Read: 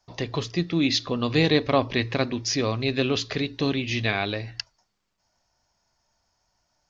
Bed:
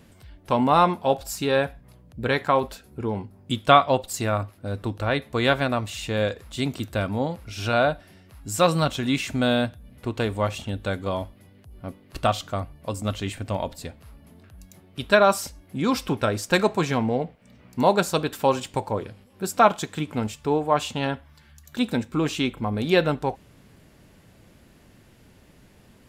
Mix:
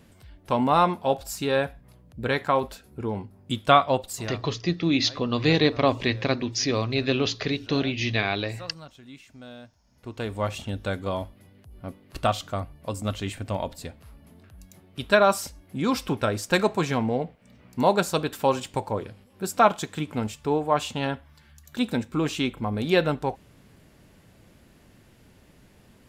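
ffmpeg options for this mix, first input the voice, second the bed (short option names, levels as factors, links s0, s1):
-filter_complex "[0:a]adelay=4100,volume=1[s0];[1:a]volume=8.41,afade=t=out:st=4.08:d=0.32:silence=0.1,afade=t=in:st=9.84:d=0.72:silence=0.0944061[s1];[s0][s1]amix=inputs=2:normalize=0"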